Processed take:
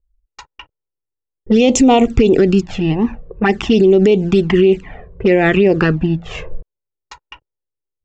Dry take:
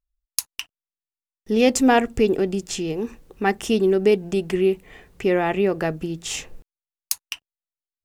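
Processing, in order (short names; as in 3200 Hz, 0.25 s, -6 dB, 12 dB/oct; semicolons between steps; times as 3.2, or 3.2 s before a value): low-pass opened by the level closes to 390 Hz, open at -16 dBFS; envelope flanger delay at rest 2.2 ms, full sweep at -14 dBFS; elliptic low-pass 7500 Hz, stop band 40 dB; maximiser +20 dB; gain -2.5 dB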